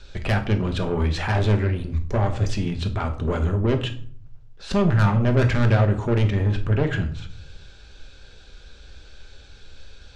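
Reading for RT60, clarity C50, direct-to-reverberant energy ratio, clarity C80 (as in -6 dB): 0.55 s, 12.0 dB, 5.0 dB, 16.5 dB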